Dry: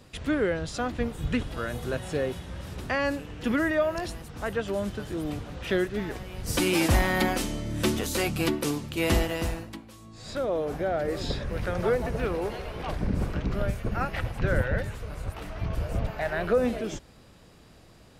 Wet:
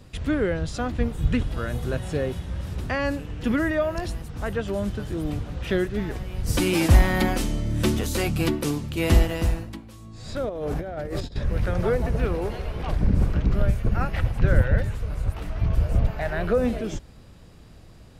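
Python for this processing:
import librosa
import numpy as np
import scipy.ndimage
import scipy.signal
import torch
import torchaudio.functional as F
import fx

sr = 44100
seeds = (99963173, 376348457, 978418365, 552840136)

y = fx.low_shelf(x, sr, hz=160.0, db=10.5)
y = fx.over_compress(y, sr, threshold_db=-29.0, ratio=-0.5, at=(10.49, 11.36))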